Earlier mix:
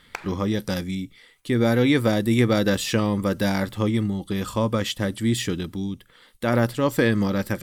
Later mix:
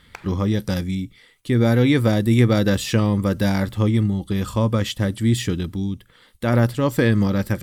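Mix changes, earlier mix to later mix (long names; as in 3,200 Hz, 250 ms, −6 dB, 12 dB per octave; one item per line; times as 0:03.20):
speech: add parametric band 75 Hz +8.5 dB 2.3 octaves
background −5.0 dB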